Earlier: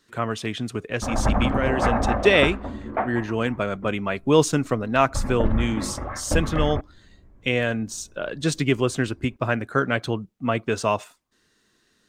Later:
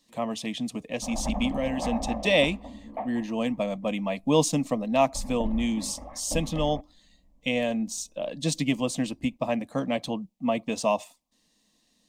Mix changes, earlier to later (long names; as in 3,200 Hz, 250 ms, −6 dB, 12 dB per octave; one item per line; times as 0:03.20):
background −7.5 dB
master: add phaser with its sweep stopped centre 390 Hz, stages 6